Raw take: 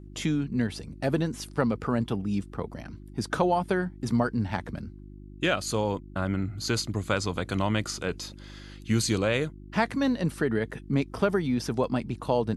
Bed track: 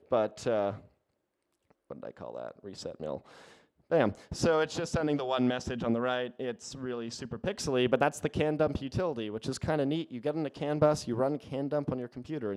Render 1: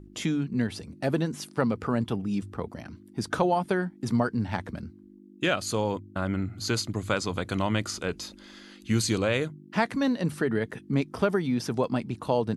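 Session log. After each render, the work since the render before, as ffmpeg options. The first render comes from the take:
-af "bandreject=f=50:t=h:w=4,bandreject=f=100:t=h:w=4,bandreject=f=150:t=h:w=4"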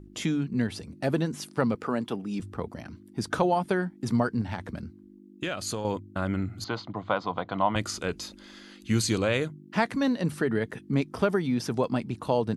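-filter_complex "[0:a]asettb=1/sr,asplit=3[a][b][c];[a]atrim=end=1.754[d];[b]atrim=start=1.75:end=2.4,asetpts=PTS-STARTPTS,afade=t=in:d=0.004:c=qsin,afade=t=out:st=0.646:d=0.004:c=qsin,highpass=220[e];[c]atrim=start=2.396[f];[d][e]acrossfade=d=0.004:c1=hsin:c2=qsin[g];[g][f]acrossfade=d=0.004:c1=qsin:c2=hsin,asettb=1/sr,asplit=3[h][i][j];[h]atrim=end=4.414[k];[i]atrim=start=4.41:end=5.85,asetpts=PTS-STARTPTS,afade=t=in:d=0.004:c=qsin,afade=t=out:st=1.436:d=0.004:c=qsin,acompressor=threshold=-27dB:ratio=6:attack=3.2:release=140:knee=1:detection=peak[l];[j]atrim=start=5.846[m];[k][l]acrossfade=d=0.004:c1=hsin:c2=qsin[n];[n][m]acrossfade=d=0.004:c1=qsin:c2=hsin,asettb=1/sr,asplit=3[o][p][q];[o]atrim=end=6.644[r];[p]atrim=start=6.64:end=7.76,asetpts=PTS-STARTPTS,afade=t=in:d=0.004:c=qsin,afade=t=out:st=1.116:d=0.004:c=qsin,highpass=170,equalizer=f=240:t=q:w=4:g=-5,equalizer=f=390:t=q:w=4:g=-8,equalizer=f=730:t=q:w=4:g=9,equalizer=f=1k:t=q:w=4:g=7,equalizer=f=1.7k:t=q:w=4:g=-5,equalizer=f=2.5k:t=q:w=4:g=-9,lowpass=f=3.4k:w=0.5412,lowpass=f=3.4k:w=1.3066[s];[q]atrim=start=7.756[t];[r][s]acrossfade=d=0.004:c1=hsin:c2=qsin[u];[u][t]acrossfade=d=0.004:c1=qsin:c2=hsin"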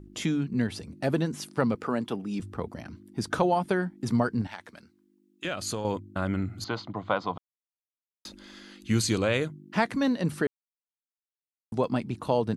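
-filter_complex "[0:a]asettb=1/sr,asplit=3[a][b][c];[a]atrim=end=4.474[d];[b]atrim=start=4.47:end=5.45,asetpts=PTS-STARTPTS,afade=t=in:d=0.004:c=qsin,afade=t=out:st=0.976:d=0.004:c=qsin,highpass=f=1.4k:p=1[e];[c]atrim=start=5.446[f];[d][e]acrossfade=d=0.004:c1=hsin:c2=qsin[g];[g][f]acrossfade=d=0.004:c1=qsin:c2=hsin,asplit=5[h][i][j][k][l];[h]atrim=end=7.38,asetpts=PTS-STARTPTS,afade=t=out:st=7.376:d=0.004:c=hsin[m];[i]atrim=start=7.38:end=8.25,asetpts=PTS-STARTPTS,volume=0[n];[j]atrim=start=8.25:end=10.47,asetpts=PTS-STARTPTS,afade=t=in:d=0.004:c=hsin,afade=t=out:st=2.216:d=0.004:c=hsin[o];[k]atrim=start=10.47:end=11.72,asetpts=PTS-STARTPTS,volume=0[p];[l]atrim=start=11.72,asetpts=PTS-STARTPTS,afade=t=in:d=0.004:c=hsin[q];[m][n][o][p][q]concat=n=5:v=0:a=1"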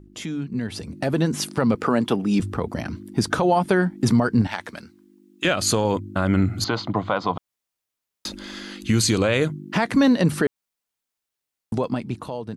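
-af "alimiter=limit=-21dB:level=0:latency=1:release=169,dynaudnorm=f=200:g=9:m=12dB"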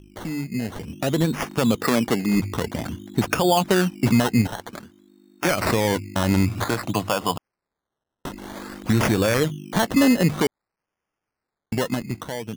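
-af "acrusher=samples=15:mix=1:aa=0.000001:lfo=1:lforange=9:lforate=0.52"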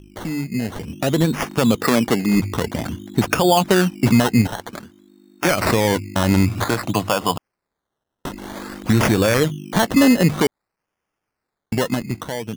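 -af "volume=3.5dB"

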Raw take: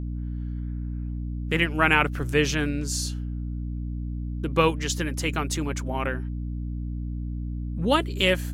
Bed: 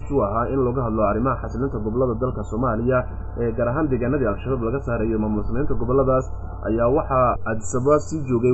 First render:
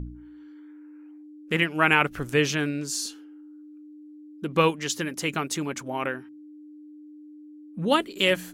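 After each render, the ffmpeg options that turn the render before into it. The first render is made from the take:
-af "bandreject=f=60:t=h:w=4,bandreject=f=120:t=h:w=4,bandreject=f=180:t=h:w=4,bandreject=f=240:t=h:w=4"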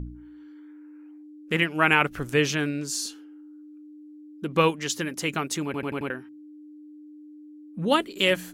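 -filter_complex "[0:a]asplit=6[a][b][c][d][e][f];[a]atrim=end=5.742[g];[b]atrim=start=5.648:end=5.742[h];[c]atrim=start=5.648:end=5.742[i];[d]atrim=start=5.648:end=5.742[j];[e]atrim=start=5.648:end=5.742[k];[f]atrim=start=6.098[l];[g][h]acrossfade=d=0.004:c1=hsin:c2=hsin[m];[m][i]acrossfade=d=0.004:c1=hsin:c2=hsin[n];[n][j]acrossfade=d=0.004:c1=hsin:c2=hsin[o];[o][k]acrossfade=d=0.004:c1=hsin:c2=hsin[p];[p][l]acrossfade=d=0.004:c1=hsin:c2=hsin"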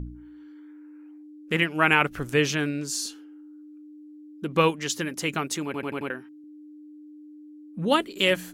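-filter_complex "[0:a]asettb=1/sr,asplit=3[a][b][c];[a]atrim=end=5.564[d];[b]atrim=start=5.56:end=6.44,asetpts=PTS-STARTPTS,afade=t=in:d=0.004:c=qsin,afade=t=out:st=0.876:d=0.004:c=qsin,highpass=f=170:p=1[e];[c]atrim=start=6.436[f];[d][e]acrossfade=d=0.004:c1=hsin:c2=qsin[g];[g][f]acrossfade=d=0.004:c1=qsin:c2=hsin"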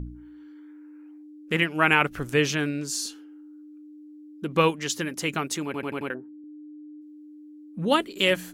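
-filter_complex "[0:a]asplit=3[a][b][c];[a]afade=t=out:st=6.13:d=0.02[d];[b]lowpass=f=500:t=q:w=1.6,afade=t=in:st=6.13:d=0.02,afade=t=out:st=7:d=0.02[e];[c]afade=t=in:st=7:d=0.02[f];[d][e][f]amix=inputs=3:normalize=0"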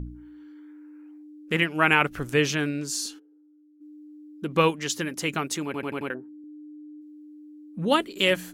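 -filter_complex "[0:a]asplit=3[a][b][c];[a]afade=t=out:st=3.18:d=0.02[d];[b]bandpass=f=450:t=q:w=4.4,afade=t=in:st=3.18:d=0.02,afade=t=out:st=3.8:d=0.02[e];[c]afade=t=in:st=3.8:d=0.02[f];[d][e][f]amix=inputs=3:normalize=0"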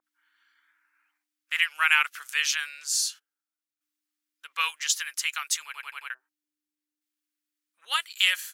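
-af "highpass=f=1.3k:w=0.5412,highpass=f=1.3k:w=1.3066,adynamicequalizer=threshold=0.0141:dfrequency=3200:dqfactor=0.7:tfrequency=3200:tqfactor=0.7:attack=5:release=100:ratio=0.375:range=3:mode=boostabove:tftype=highshelf"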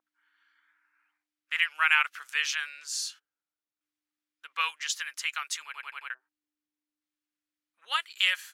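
-af "lowpass=f=2.9k:p=1"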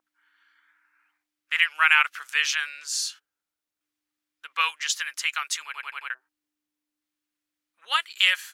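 -af "volume=5dB,alimiter=limit=-3dB:level=0:latency=1"

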